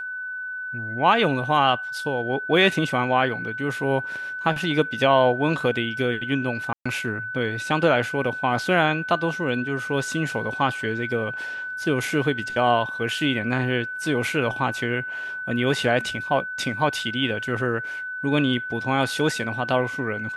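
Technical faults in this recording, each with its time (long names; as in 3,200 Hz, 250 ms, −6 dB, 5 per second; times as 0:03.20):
whistle 1,500 Hz −29 dBFS
0:06.73–0:06.86: drop-out 125 ms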